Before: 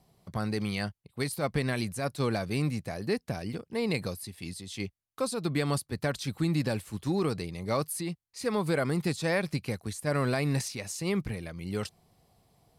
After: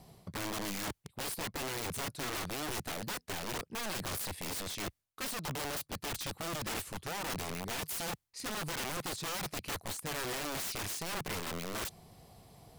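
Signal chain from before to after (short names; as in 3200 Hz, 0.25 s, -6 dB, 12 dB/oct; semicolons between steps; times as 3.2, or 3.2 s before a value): reverse; compressor 16:1, threshold -39 dBFS, peak gain reduction 16.5 dB; reverse; wrapped overs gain 41 dB; gain +8.5 dB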